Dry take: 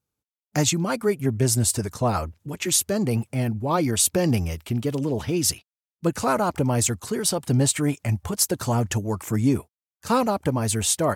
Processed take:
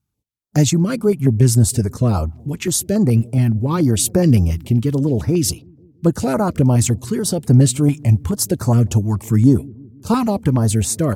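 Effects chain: low shelf 380 Hz +10 dB; dark delay 0.163 s, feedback 57%, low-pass 470 Hz, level -23 dB; stepped notch 7.1 Hz 500–3100 Hz; gain +1.5 dB

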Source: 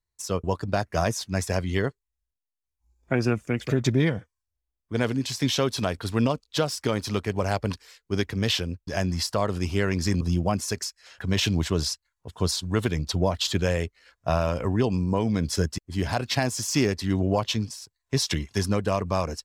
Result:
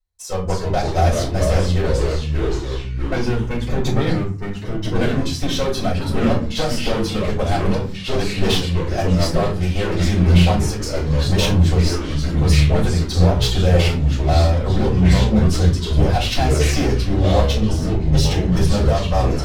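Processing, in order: sample leveller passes 1; in parallel at -0.5 dB: level quantiser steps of 22 dB; on the sum: one-sided clip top -19.5 dBFS; shoebox room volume 130 m³, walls furnished, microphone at 5.2 m; echoes that change speed 0.253 s, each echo -3 st, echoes 3; gain -12.5 dB

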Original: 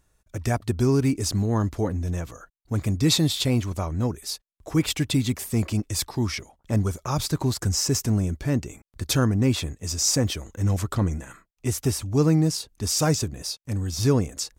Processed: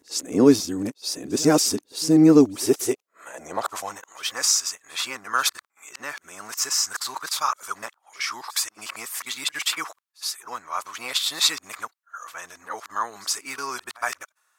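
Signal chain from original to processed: whole clip reversed; high-pass sweep 290 Hz -> 1200 Hz, 2.46–4.26; pre-echo 69 ms -22.5 dB; gain +2.5 dB

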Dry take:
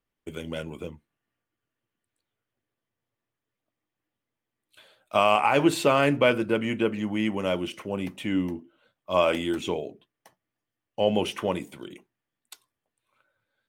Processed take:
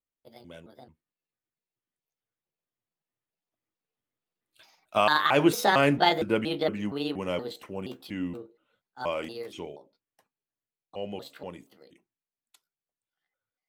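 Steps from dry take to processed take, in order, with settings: trilling pitch shifter +6 st, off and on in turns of 0.229 s; Doppler pass-by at 5.8, 14 m/s, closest 17 m

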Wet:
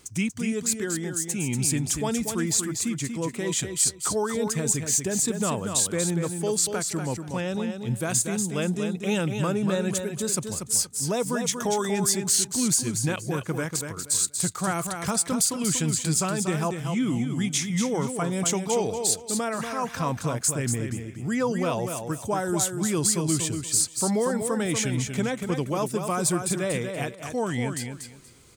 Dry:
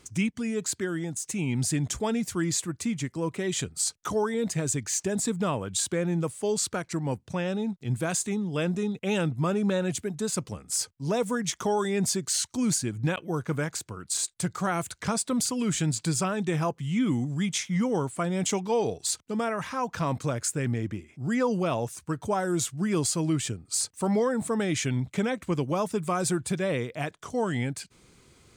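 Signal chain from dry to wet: high shelf 7500 Hz +10.5 dB; feedback echo 0.238 s, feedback 22%, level -6.5 dB

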